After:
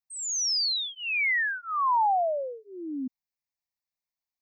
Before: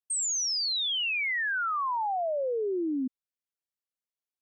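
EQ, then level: fixed phaser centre 2100 Hz, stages 8; dynamic EQ 1000 Hz, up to +4 dB, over -45 dBFS, Q 0.75; +3.0 dB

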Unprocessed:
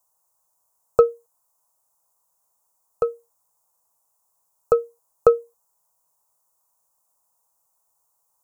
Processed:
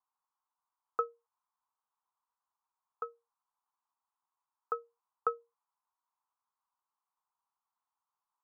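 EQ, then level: BPF 620–2100 Hz; fixed phaser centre 1400 Hz, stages 4; -6.0 dB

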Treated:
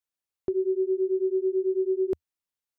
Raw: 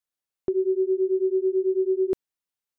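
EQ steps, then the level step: bell 80 Hz +5 dB 0.55 oct; -2.5 dB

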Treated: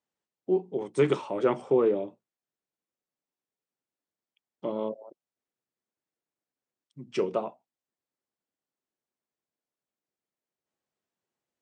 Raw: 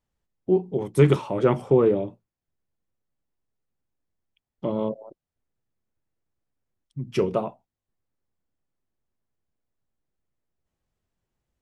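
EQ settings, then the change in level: HPF 260 Hz 12 dB/oct; brick-wall FIR low-pass 9200 Hz; -3.5 dB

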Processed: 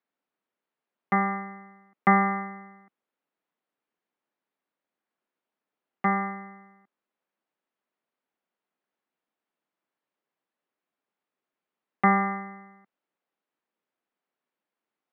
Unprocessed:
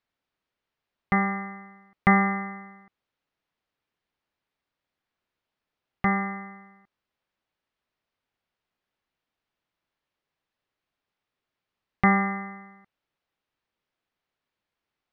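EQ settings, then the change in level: HPF 190 Hz 24 dB/oct; LPF 1500 Hz 6 dB/oct; dynamic EQ 1100 Hz, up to +4 dB, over -36 dBFS, Q 1.1; 0.0 dB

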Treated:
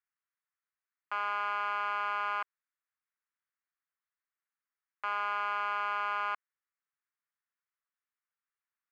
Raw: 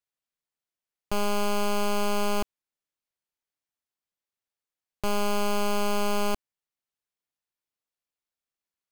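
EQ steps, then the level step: Butterworth band-pass 1500 Hz, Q 1.5; +4.5 dB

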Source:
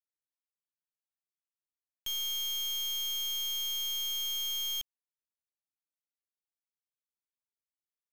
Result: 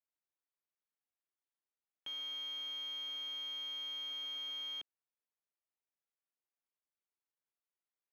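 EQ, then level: HPF 290 Hz 12 dB/oct; air absorption 410 m; high shelf 10000 Hz -6.5 dB; +2.0 dB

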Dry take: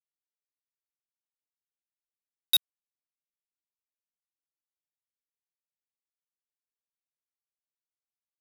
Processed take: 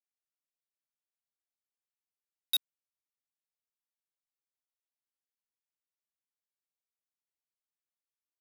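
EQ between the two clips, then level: HPF 280 Hz; -6.5 dB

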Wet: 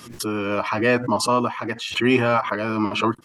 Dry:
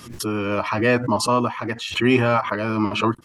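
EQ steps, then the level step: bell 64 Hz -4.5 dB 1.2 oct; low shelf 110 Hz -5.5 dB; 0.0 dB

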